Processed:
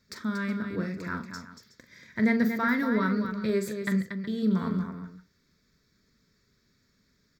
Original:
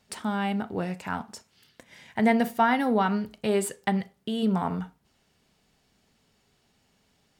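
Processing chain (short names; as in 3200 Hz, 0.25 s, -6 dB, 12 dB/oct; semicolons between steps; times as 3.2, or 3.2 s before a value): fixed phaser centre 2900 Hz, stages 6; tapped delay 42/234/369 ms -10.5/-7.5/-15.5 dB; AC-3 320 kbps 44100 Hz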